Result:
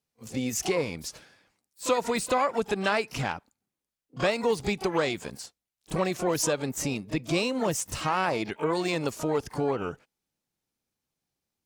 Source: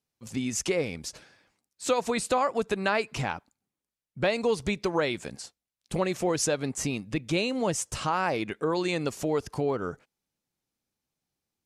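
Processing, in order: harmony voices +12 st -12 dB; pre-echo 32 ms -17 dB

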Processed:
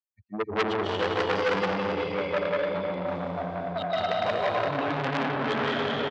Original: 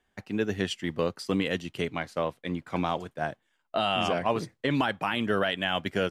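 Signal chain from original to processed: expander on every frequency bin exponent 3; tilt EQ -2 dB/octave; LFO low-pass square 1.7 Hz 560–3600 Hz; high-pass 72 Hz 24 dB/octave; delay 181 ms -7 dB; reverberation RT60 4.5 s, pre-delay 110 ms, DRR -10 dB; dynamic bell 220 Hz, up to -5 dB, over -31 dBFS, Q 1; low-pass 9 kHz; transformer saturation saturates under 2 kHz

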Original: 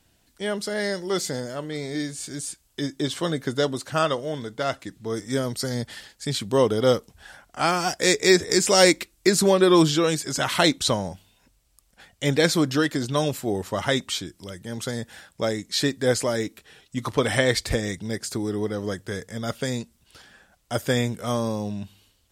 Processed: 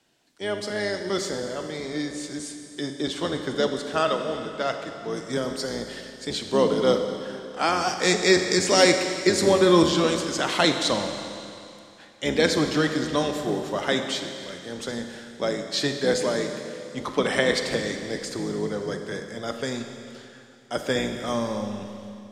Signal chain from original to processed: octave divider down 1 oct, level +2 dB; three-band isolator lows -22 dB, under 200 Hz, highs -13 dB, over 7.8 kHz; Schroeder reverb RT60 2.7 s, combs from 30 ms, DRR 5.5 dB; trim -1 dB

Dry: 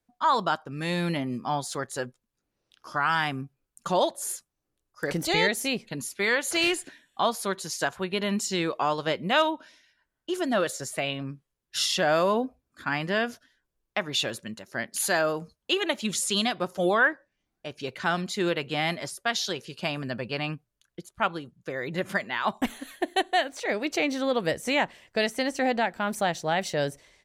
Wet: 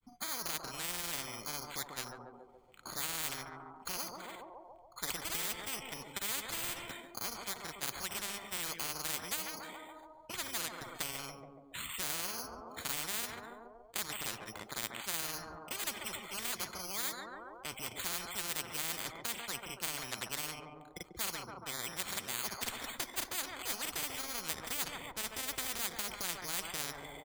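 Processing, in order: comb 0.9 ms, depth 66%; careless resampling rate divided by 8×, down filtered, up hold; granulator, spray 29 ms, pitch spread up and down by 0 st; band-passed feedback delay 141 ms, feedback 56%, band-pass 620 Hz, level -13.5 dB; spectrum-flattening compressor 10:1; trim -5.5 dB

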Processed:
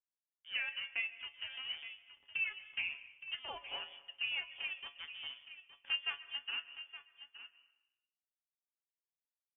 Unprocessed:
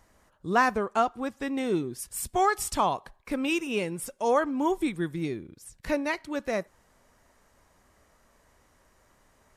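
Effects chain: local Wiener filter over 41 samples; transient shaper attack -1 dB, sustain -6 dB; resonant low shelf 420 Hz -11.5 dB, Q 1.5; in parallel at +0.5 dB: peak limiter -21 dBFS, peak gain reduction 11.5 dB; on the sum: compression 4:1, threshold -34 dBFS, peak gain reduction 16.5 dB; three-band isolator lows -21 dB, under 300 Hz, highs -13 dB, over 2.6 kHz; crossover distortion -52.5 dBFS; feedback comb 150 Hz, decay 0.17 s, harmonics all, mix 80%; on a send: delay 868 ms -13 dB; on the sum: plate-style reverb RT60 0.91 s, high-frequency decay 1×, pre-delay 115 ms, DRR 14.5 dB; frequency inversion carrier 3.4 kHz; trim +4 dB

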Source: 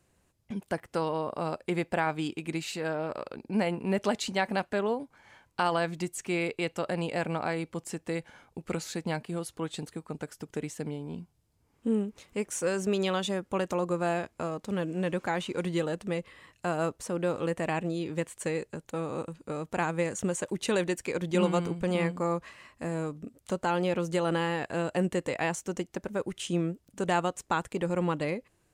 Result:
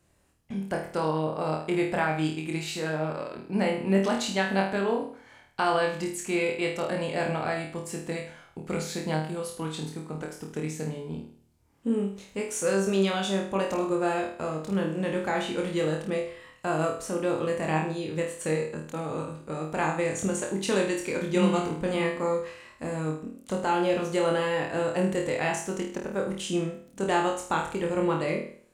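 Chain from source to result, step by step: flutter echo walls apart 4.4 m, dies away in 0.5 s

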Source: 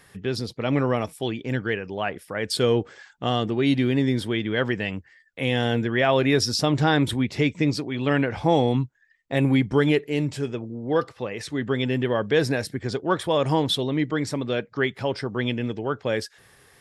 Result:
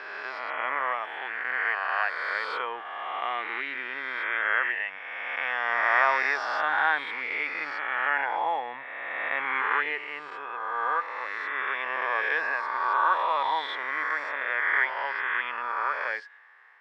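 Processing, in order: reverse spectral sustain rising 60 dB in 2.35 s; Chebyshev band-pass 930–2000 Hz, order 2

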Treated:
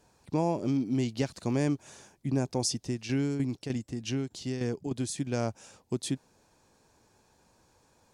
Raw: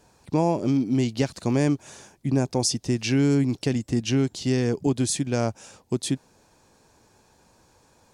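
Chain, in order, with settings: 2.79–5.18 s: tremolo saw down 3.3 Hz, depth 60%; trim -6 dB

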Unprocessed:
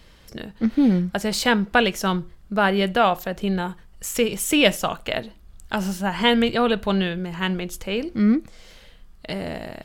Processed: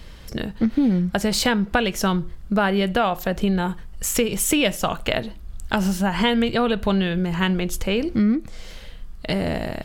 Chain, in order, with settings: bass shelf 150 Hz +6.5 dB; compression 4:1, threshold -23 dBFS, peak gain reduction 11 dB; trim +5.5 dB

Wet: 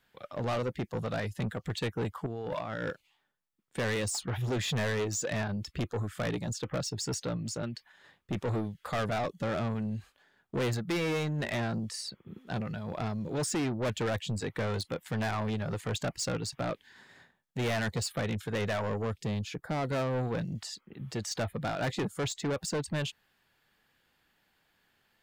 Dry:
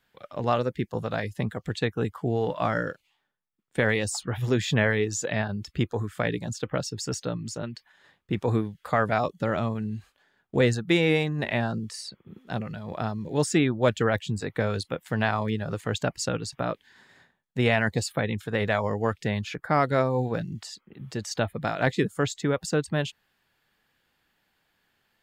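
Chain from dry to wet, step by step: 2.26–2.90 s: compressor with a negative ratio -34 dBFS, ratio -1; 19.03–19.86 s: peaking EQ 1.7 kHz -9 dB 2 oct; saturation -27.5 dBFS, distortion -6 dB

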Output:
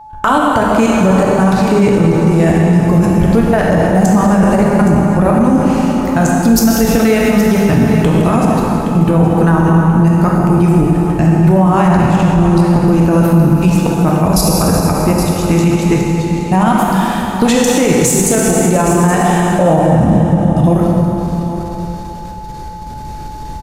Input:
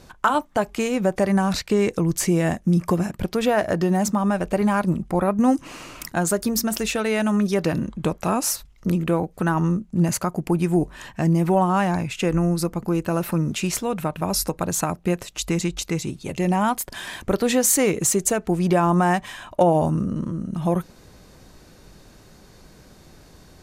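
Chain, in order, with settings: bass shelf 170 Hz +11.5 dB; level held to a coarse grid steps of 21 dB; trance gate ".xxxxxx.xx" 119 bpm -24 dB; whistle 860 Hz -46 dBFS; on a send: delay 819 ms -13 dB; on the sum: plate-style reverb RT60 3.2 s, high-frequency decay 0.8×, DRR -2.5 dB; loudness maximiser +13 dB; trim -1 dB

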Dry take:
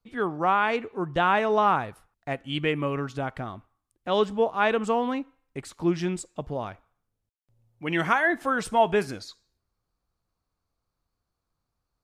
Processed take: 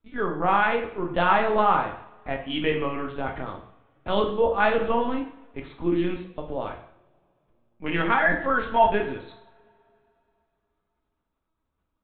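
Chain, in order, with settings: LPC vocoder at 8 kHz pitch kept; two-slope reverb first 0.6 s, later 3 s, from -28 dB, DRR 2 dB

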